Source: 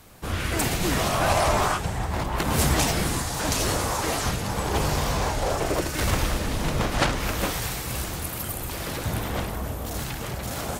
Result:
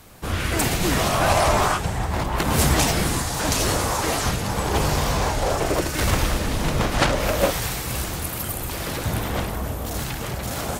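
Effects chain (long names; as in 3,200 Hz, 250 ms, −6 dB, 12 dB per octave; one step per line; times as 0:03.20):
0:07.10–0:07.51: parametric band 580 Hz +11.5 dB 0.48 octaves
level +3 dB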